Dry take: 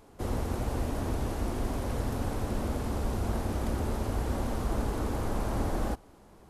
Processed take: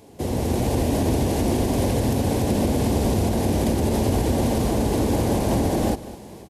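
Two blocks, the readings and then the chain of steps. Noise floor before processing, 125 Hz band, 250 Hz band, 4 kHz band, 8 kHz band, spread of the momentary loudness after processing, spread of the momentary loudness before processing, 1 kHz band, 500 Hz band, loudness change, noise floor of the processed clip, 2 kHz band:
-55 dBFS, +10.0 dB, +13.0 dB, +12.5 dB, +13.5 dB, 3 LU, 1 LU, +9.0 dB, +12.5 dB, +11.0 dB, -41 dBFS, +7.5 dB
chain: bell 1300 Hz -13 dB 0.82 oct; AGC gain up to 8.5 dB; HPF 89 Hz 12 dB/oct; notch 1300 Hz, Q 17; in parallel at -2 dB: compressor, threshold -33 dBFS, peak gain reduction 12 dB; on the sum: limiter -17 dBFS, peak gain reduction 5.5 dB; on a send: echo 0.202 s -16 dB; on the sum: gain +4.5 dB

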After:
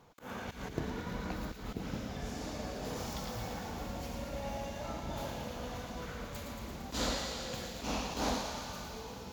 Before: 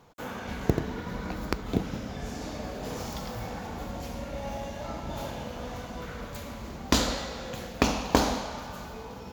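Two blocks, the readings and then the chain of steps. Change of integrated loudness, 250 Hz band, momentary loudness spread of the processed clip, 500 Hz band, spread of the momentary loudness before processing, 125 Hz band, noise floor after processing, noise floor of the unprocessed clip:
-7.0 dB, -8.0 dB, 8 LU, -7.0 dB, 13 LU, -7.0 dB, -47 dBFS, -41 dBFS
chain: auto swell 0.128 s; thin delay 0.114 s, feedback 79%, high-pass 2700 Hz, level -6 dB; gain -4 dB

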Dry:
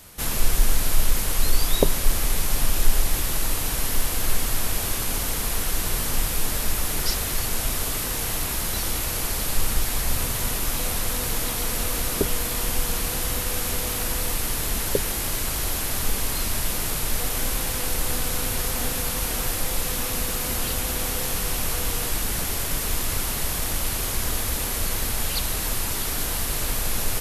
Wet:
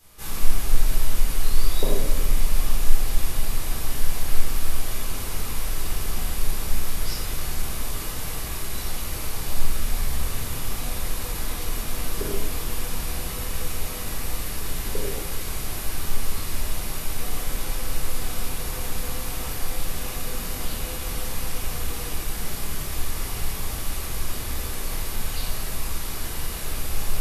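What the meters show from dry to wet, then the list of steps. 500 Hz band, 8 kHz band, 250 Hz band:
-4.5 dB, -7.0 dB, -4.0 dB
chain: shoebox room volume 550 m³, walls mixed, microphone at 3.9 m; gain -14 dB

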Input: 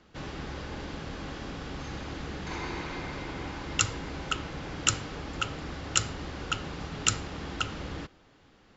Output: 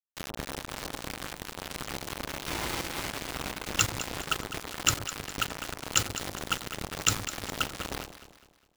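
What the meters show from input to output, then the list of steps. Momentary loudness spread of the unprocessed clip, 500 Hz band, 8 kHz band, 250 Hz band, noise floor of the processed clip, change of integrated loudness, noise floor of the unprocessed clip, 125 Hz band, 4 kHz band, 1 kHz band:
10 LU, +0.5 dB, n/a, -2.0 dB, -62 dBFS, +1.5 dB, -60 dBFS, -2.5 dB, +2.0 dB, +1.5 dB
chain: in parallel at -1.5 dB: compressor 16:1, threshold -47 dBFS, peak gain reduction 29.5 dB; on the sum: bit-crush 5-bit; echo with dull and thin repeats by turns 0.102 s, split 940 Hz, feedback 63%, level -8 dB

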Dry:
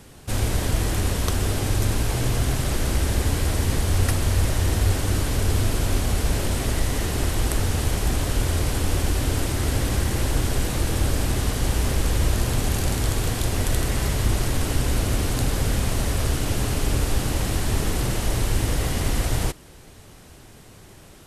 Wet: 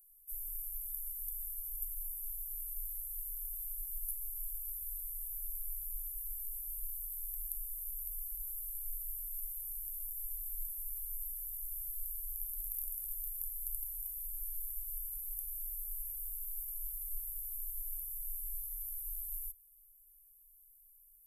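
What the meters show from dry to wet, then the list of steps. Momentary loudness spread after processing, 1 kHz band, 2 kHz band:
1 LU, under -40 dB, under -40 dB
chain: inverse Chebyshev band-stop 110–4400 Hz, stop band 70 dB; tilt +2.5 dB/oct; gain -2 dB

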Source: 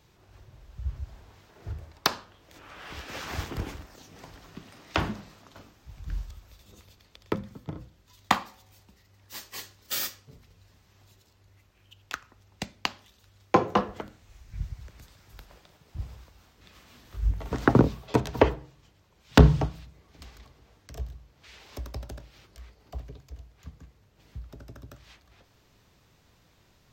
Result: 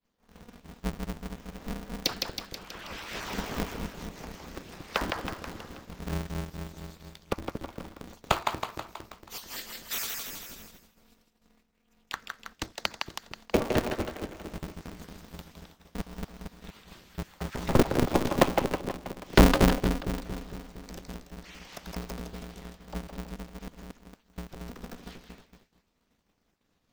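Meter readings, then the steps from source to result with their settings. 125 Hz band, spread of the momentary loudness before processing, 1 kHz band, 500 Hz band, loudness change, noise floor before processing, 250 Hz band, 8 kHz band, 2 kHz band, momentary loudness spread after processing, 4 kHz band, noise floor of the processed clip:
-4.0 dB, 24 LU, -1.5 dB, +0.5 dB, -2.5 dB, -63 dBFS, 0.0 dB, +2.5 dB, +0.5 dB, 21 LU, +1.5 dB, -73 dBFS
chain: random spectral dropouts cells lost 25%; split-band echo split 360 Hz, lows 0.229 s, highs 0.161 s, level -4 dB; in parallel at -1 dB: compressor, threshold -41 dBFS, peak gain reduction 28.5 dB; on the sum: expander -43 dBFS; polarity switched at an audio rate 120 Hz; gain -2.5 dB

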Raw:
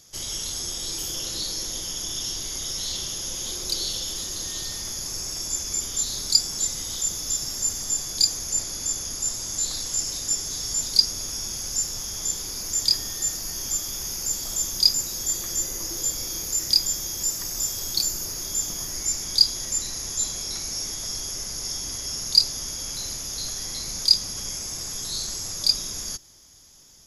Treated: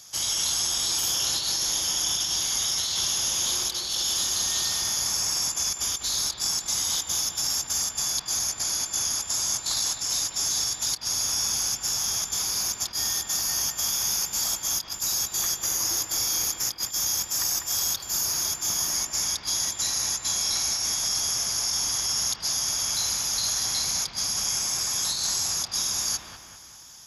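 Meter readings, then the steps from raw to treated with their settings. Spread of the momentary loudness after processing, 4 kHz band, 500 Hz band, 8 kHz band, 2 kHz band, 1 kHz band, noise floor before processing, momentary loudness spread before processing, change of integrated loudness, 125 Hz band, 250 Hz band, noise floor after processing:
2 LU, -1.0 dB, -1.0 dB, +2.0 dB, +6.0 dB, +7.5 dB, -33 dBFS, 10 LU, +0.5 dB, -3.0 dB, -3.0 dB, -43 dBFS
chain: HPF 60 Hz; resonant low shelf 630 Hz -7.5 dB, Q 1.5; notch 2000 Hz, Q 19; negative-ratio compressor -31 dBFS, ratio -0.5; on a send: analogue delay 0.198 s, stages 4096, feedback 50%, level -5 dB; on the sum: gain +3 dB

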